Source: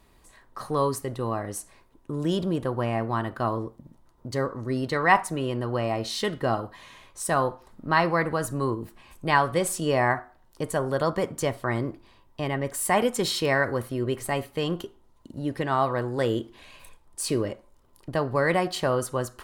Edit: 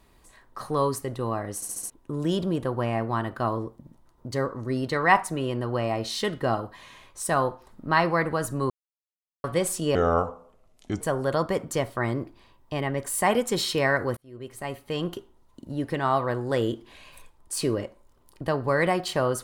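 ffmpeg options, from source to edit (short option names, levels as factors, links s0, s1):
-filter_complex "[0:a]asplit=11[s0][s1][s2][s3][s4][s5][s6][s7][s8][s9][s10];[s0]atrim=end=1.622[s11];[s1]atrim=start=1.548:end=1.622[s12];[s2]atrim=start=1.548:end=1.622[s13];[s3]atrim=start=1.548:end=1.622[s14];[s4]atrim=start=1.548:end=1.622[s15];[s5]atrim=start=1.898:end=8.7,asetpts=PTS-STARTPTS,afade=t=out:st=6.798:d=0.004:c=hsin[s16];[s6]atrim=start=8.7:end=9.44,asetpts=PTS-STARTPTS,volume=0[s17];[s7]atrim=start=9.44:end=9.954,asetpts=PTS-STARTPTS,afade=t=in:d=0.004:c=hsin[s18];[s8]atrim=start=9.95:end=10.68,asetpts=PTS-STARTPTS,asetrate=30429,aresample=44100[s19];[s9]atrim=start=10.676:end=13.84,asetpts=PTS-STARTPTS,afade=t=out:st=3.16:d=0.004:c=hsin[s20];[s10]atrim=start=13.84,asetpts=PTS-STARTPTS,afade=t=in:d=1[s21];[s11][s12]acrossfade=d=0.004:c1=hsin:c2=hsin[s22];[s22][s13]acrossfade=d=0.004:c1=hsin:c2=hsin[s23];[s23][s14]acrossfade=d=0.004:c1=hsin:c2=hsin[s24];[s24][s15]acrossfade=d=0.004:c1=hsin:c2=hsin[s25];[s16][s17][s18]concat=n=3:v=0:a=1[s26];[s25][s26]acrossfade=d=0.004:c1=hsin:c2=hsin[s27];[s27][s19]acrossfade=d=0.004:c1=hsin:c2=hsin[s28];[s20][s21]concat=n=2:v=0:a=1[s29];[s28][s29]acrossfade=d=0.004:c1=hsin:c2=hsin"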